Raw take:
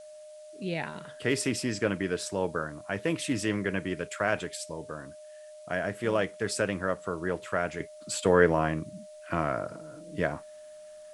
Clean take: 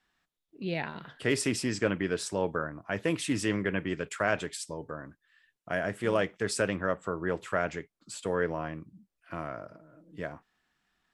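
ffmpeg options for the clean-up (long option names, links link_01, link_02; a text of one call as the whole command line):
ffmpeg -i in.wav -af "bandreject=frequency=610:width=30,agate=range=-21dB:threshold=-40dB,asetnsamples=nb_out_samples=441:pad=0,asendcmd='7.8 volume volume -8.5dB',volume=0dB" out.wav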